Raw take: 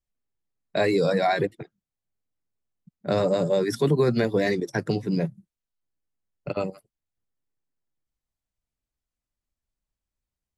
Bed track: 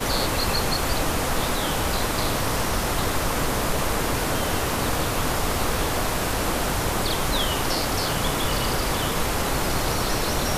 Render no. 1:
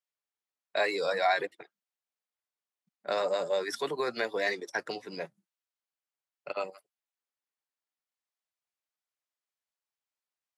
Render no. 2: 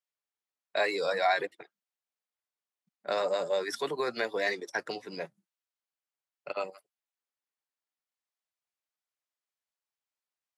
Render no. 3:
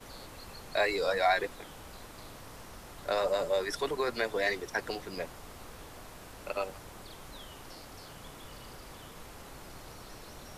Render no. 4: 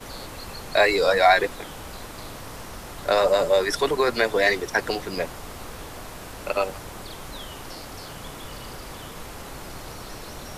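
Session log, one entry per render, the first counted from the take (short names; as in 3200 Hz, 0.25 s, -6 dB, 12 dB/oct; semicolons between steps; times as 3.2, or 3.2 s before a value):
HPF 750 Hz 12 dB/oct; high shelf 8000 Hz -9 dB
nothing audible
add bed track -24 dB
gain +10 dB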